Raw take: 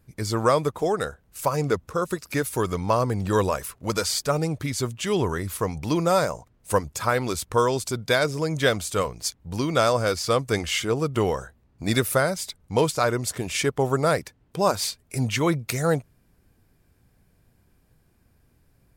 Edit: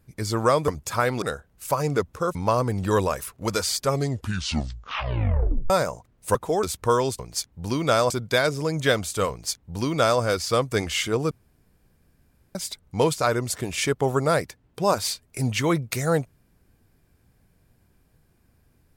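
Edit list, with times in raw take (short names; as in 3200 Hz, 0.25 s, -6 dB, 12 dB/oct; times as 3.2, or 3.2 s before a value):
0.68–0.96 swap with 6.77–7.31
2.09–2.77 cut
4.22 tape stop 1.90 s
9.07–9.98 copy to 7.87
11.08–12.32 room tone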